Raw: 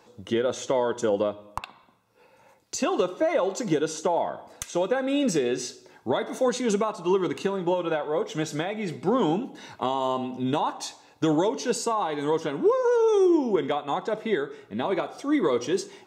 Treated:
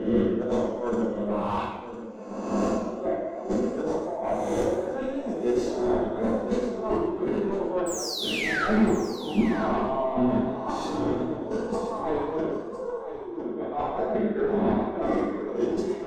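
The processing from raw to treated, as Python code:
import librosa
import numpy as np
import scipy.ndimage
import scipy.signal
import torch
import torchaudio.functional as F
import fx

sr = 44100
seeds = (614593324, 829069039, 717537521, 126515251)

p1 = fx.spec_swells(x, sr, rise_s=1.08)
p2 = scipy.signal.sosfilt(scipy.signal.butter(2, 210.0, 'highpass', fs=sr, output='sos'), p1)
p3 = fx.high_shelf(p2, sr, hz=2300.0, db=-10.5)
p4 = fx.hum_notches(p3, sr, base_hz=60, count=10)
p5 = fx.over_compress(p4, sr, threshold_db=-30.0, ratio=-0.5)
p6 = fx.spec_paint(p5, sr, seeds[0], shape='fall', start_s=7.86, length_s=0.81, low_hz=1200.0, high_hz=8200.0, level_db=-19.0)
p7 = 10.0 ** (-24.5 / 20.0) * np.tanh(p6 / 10.0 ** (-24.5 / 20.0))
p8 = fx.tilt_eq(p7, sr, slope=-3.5)
p9 = p8 + fx.echo_single(p8, sr, ms=1006, db=-12.0, dry=0)
p10 = fx.rev_fdn(p9, sr, rt60_s=0.69, lf_ratio=0.7, hf_ratio=0.8, size_ms=27.0, drr_db=-1.5)
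p11 = fx.echo_warbled(p10, sr, ms=110, feedback_pct=43, rate_hz=2.8, cents=151, wet_db=-9.0)
y = p11 * librosa.db_to_amplitude(-2.5)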